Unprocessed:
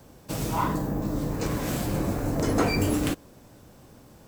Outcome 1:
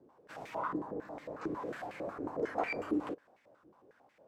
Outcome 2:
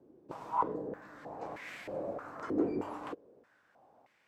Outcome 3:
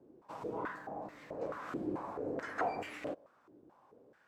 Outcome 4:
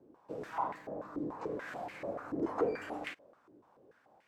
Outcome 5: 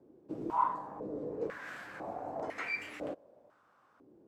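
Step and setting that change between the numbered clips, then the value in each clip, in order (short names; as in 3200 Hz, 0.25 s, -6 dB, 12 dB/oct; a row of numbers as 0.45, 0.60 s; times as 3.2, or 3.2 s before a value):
stepped band-pass, rate: 11, 3.2, 4.6, 6.9, 2 Hz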